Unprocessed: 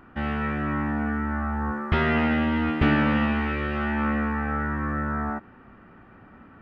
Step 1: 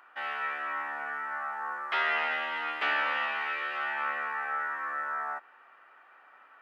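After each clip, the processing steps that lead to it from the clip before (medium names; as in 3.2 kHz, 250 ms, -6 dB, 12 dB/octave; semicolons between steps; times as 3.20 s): Bessel high-pass 950 Hz, order 4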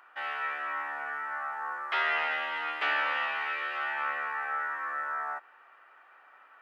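peaking EQ 160 Hz -12 dB 0.98 oct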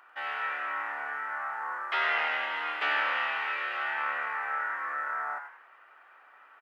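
frequency-shifting echo 95 ms, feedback 31%, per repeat +110 Hz, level -8 dB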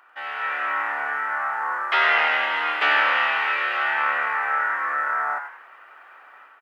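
level rider gain up to 7 dB; trim +2 dB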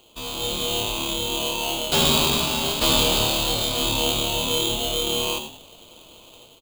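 polarity switched at an audio rate 1.8 kHz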